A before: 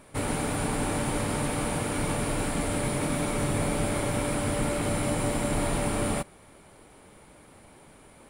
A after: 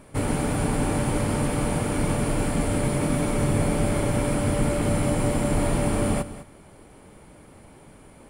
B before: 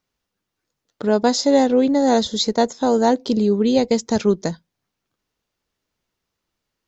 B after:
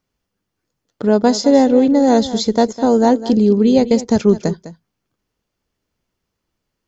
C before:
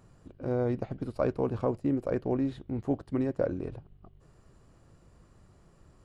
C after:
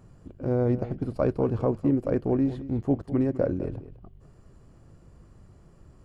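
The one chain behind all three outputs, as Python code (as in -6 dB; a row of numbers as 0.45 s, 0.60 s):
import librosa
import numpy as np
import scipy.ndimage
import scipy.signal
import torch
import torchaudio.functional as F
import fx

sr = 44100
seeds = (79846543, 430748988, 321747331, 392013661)

y = fx.low_shelf(x, sr, hz=500.0, db=6.5)
y = fx.notch(y, sr, hz=3800.0, q=16.0)
y = y + 10.0 ** (-14.5 / 20.0) * np.pad(y, (int(204 * sr / 1000.0), 0))[:len(y)]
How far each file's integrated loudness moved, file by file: +4.0 LU, +4.0 LU, +4.5 LU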